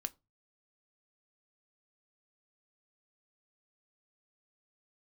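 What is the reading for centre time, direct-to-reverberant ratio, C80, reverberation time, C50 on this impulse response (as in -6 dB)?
3 ms, 10.0 dB, 33.0 dB, 0.25 s, 26.5 dB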